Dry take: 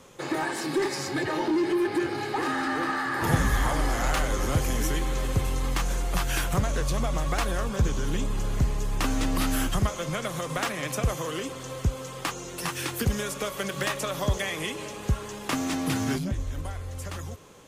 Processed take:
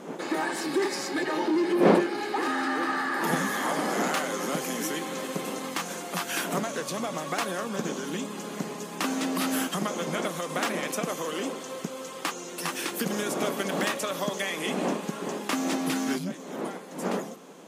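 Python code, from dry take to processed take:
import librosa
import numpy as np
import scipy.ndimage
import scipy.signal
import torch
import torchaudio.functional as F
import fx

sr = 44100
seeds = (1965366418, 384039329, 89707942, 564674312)

y = fx.dmg_wind(x, sr, seeds[0], corner_hz=490.0, level_db=-34.0)
y = fx.brickwall_highpass(y, sr, low_hz=160.0)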